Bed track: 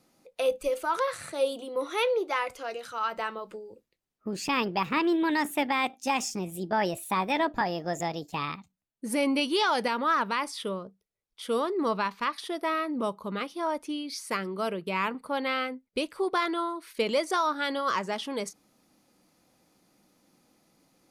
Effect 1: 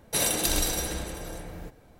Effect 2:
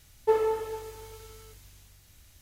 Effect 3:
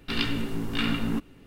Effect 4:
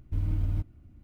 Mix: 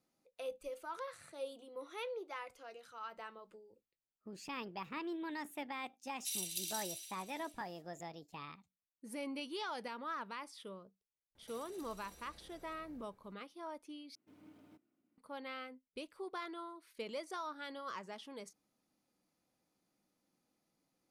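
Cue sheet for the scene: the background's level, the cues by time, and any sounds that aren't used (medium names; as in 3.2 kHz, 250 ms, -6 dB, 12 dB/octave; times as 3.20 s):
bed track -16.5 dB
6.12 s: add 1 -13.5 dB + steep high-pass 2.6 kHz
11.35 s: add 1 -17 dB + compression 4:1, threshold -41 dBFS
14.15 s: replace with 4 -15 dB + high-pass 250 Hz 24 dB/octave
not used: 2, 3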